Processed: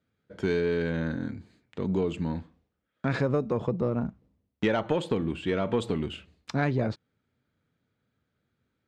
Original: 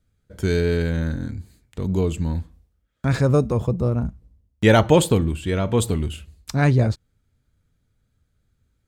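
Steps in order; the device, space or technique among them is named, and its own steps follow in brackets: AM radio (band-pass 190–3400 Hz; compression 10:1, threshold -21 dBFS, peak gain reduction 11.5 dB; saturation -13.5 dBFS, distortion -24 dB)

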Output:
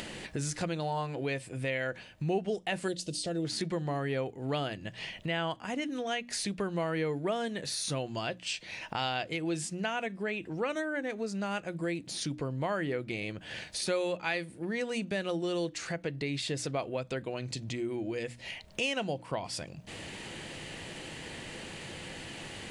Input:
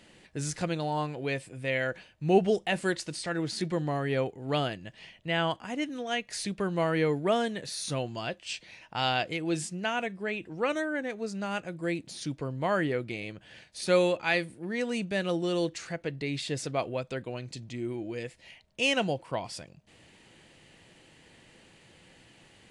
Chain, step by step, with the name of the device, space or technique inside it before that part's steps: hum notches 60/120/180/240/300 Hz; 2.88–3.45 s: high-order bell 1.4 kHz -15.5 dB; upward and downward compression (upward compressor, threshold -31 dBFS; compression 3:1, threshold -31 dBFS, peak gain reduction 11.5 dB); trim +1 dB

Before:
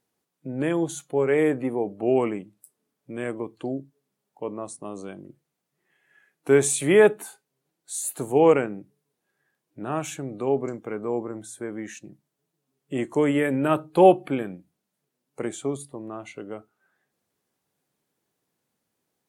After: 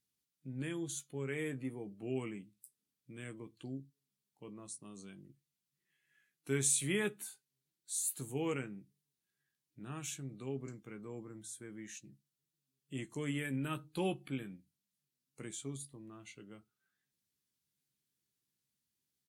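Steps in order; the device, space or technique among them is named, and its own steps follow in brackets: amplifier tone stack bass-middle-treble 6-0-2; presence and air boost (peaking EQ 4.2 kHz +4.5 dB 1.4 oct; treble shelf 9.5 kHz +4 dB); doubling 15 ms -9 dB; trim +5 dB

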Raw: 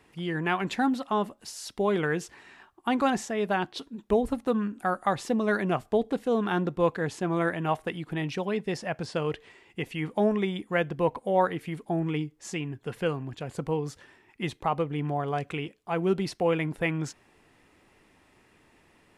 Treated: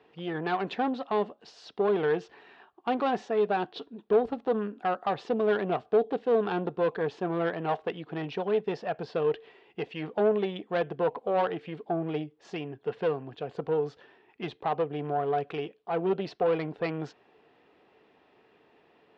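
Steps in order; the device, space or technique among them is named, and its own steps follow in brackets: guitar amplifier (valve stage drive 23 dB, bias 0.5; tone controls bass -4 dB, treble +5 dB; cabinet simulation 92–3700 Hz, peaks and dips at 96 Hz -7 dB, 440 Hz +9 dB, 720 Hz +6 dB, 2.1 kHz -5 dB)

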